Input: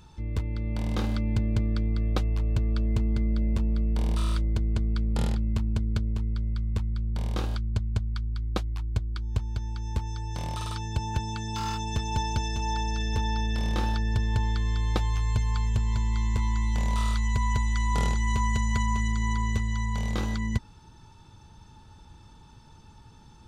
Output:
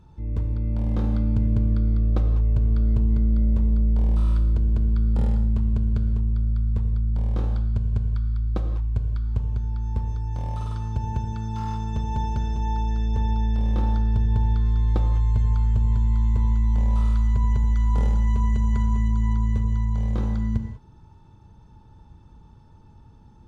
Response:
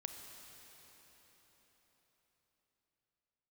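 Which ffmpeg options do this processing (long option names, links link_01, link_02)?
-filter_complex "[0:a]tiltshelf=frequency=1500:gain=8[link_01];[1:a]atrim=start_sample=2205,afade=type=out:start_time=0.4:duration=0.01,atrim=end_sample=18081,asetrate=74970,aresample=44100[link_02];[link_01][link_02]afir=irnorm=-1:irlink=0,volume=1.5dB"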